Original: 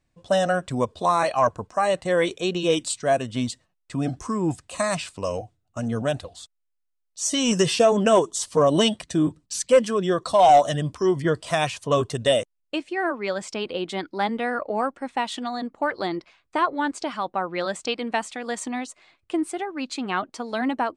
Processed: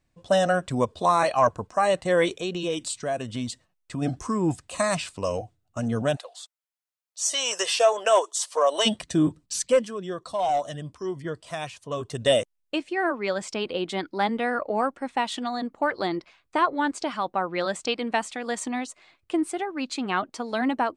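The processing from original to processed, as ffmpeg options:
-filter_complex "[0:a]asplit=3[a][b][c];[a]afade=t=out:st=2.35:d=0.02[d];[b]acompressor=threshold=-29dB:ratio=2:attack=3.2:release=140:knee=1:detection=peak,afade=t=in:st=2.35:d=0.02,afade=t=out:st=4.01:d=0.02[e];[c]afade=t=in:st=4.01:d=0.02[f];[d][e][f]amix=inputs=3:normalize=0,asplit=3[g][h][i];[g]afade=t=out:st=6.15:d=0.02[j];[h]highpass=f=540:w=0.5412,highpass=f=540:w=1.3066,afade=t=in:st=6.15:d=0.02,afade=t=out:st=8.85:d=0.02[k];[i]afade=t=in:st=8.85:d=0.02[l];[j][k][l]amix=inputs=3:normalize=0,asplit=3[m][n][o];[m]atrim=end=9.91,asetpts=PTS-STARTPTS,afade=t=out:st=9.58:d=0.33:silence=0.316228[p];[n]atrim=start=9.91:end=12,asetpts=PTS-STARTPTS,volume=-10dB[q];[o]atrim=start=12,asetpts=PTS-STARTPTS,afade=t=in:d=0.33:silence=0.316228[r];[p][q][r]concat=n=3:v=0:a=1"

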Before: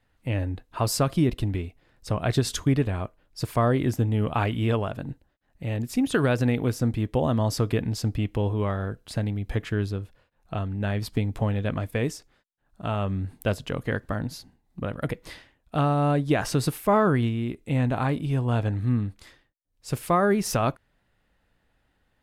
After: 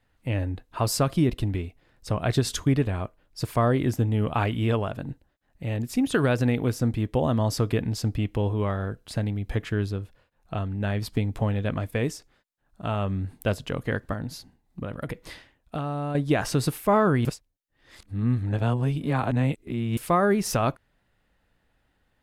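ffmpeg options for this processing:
-filter_complex "[0:a]asettb=1/sr,asplit=3[a][b][c];[a]atrim=end=14.134[d];[b]atrim=start=14.13:end=16.15,asetpts=PTS-STARTPTS,afade=t=in:d=0.004:c=qsin,afade=t=out:st=2.016:d=0.004:c=qsin,acompressor=threshold=-26dB:ratio=6:attack=3.2:release=140:knee=1:detection=peak[e];[c]atrim=start=16.146[f];[d][e]acrossfade=d=0.004:c1=hsin:c2=qsin[g];[g][f]acrossfade=d=0.004:c1=qsin:c2=hsin,asplit=3[h][i][j];[h]atrim=end=17.252[k];[i]atrim=start=17.248:end=19.972,asetpts=PTS-STARTPTS,areverse[l];[j]atrim=start=19.968[m];[k][l]acrossfade=d=0.004:c1=hsin:c2=hsin[n];[n][m]acrossfade=d=0.004:c1=hsin:c2=hsin"

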